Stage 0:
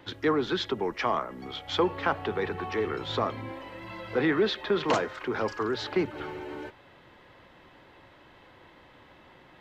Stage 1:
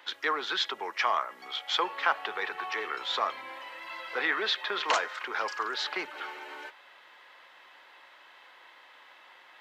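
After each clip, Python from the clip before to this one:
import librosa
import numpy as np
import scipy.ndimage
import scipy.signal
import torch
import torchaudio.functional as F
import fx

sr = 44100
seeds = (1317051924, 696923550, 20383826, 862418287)

y = scipy.signal.sosfilt(scipy.signal.butter(2, 1000.0, 'highpass', fs=sr, output='sos'), x)
y = y * 10.0 ** (4.0 / 20.0)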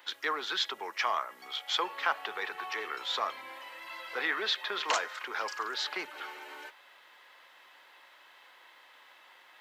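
y = fx.high_shelf(x, sr, hz=7200.0, db=11.5)
y = y * 10.0 ** (-3.5 / 20.0)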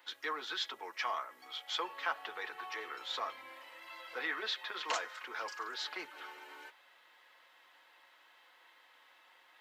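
y = fx.notch_comb(x, sr, f0_hz=200.0)
y = y * 10.0 ** (-5.0 / 20.0)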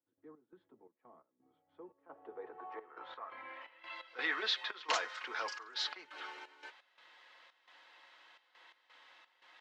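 y = fx.step_gate(x, sr, bpm=86, pattern='.x.xx.x.xxx.xxxx', floor_db=-12.0, edge_ms=4.5)
y = fx.filter_sweep_lowpass(y, sr, from_hz=200.0, to_hz=5400.0, start_s=1.71, end_s=4.27, q=1.2)
y = y * 10.0 ** (1.5 / 20.0)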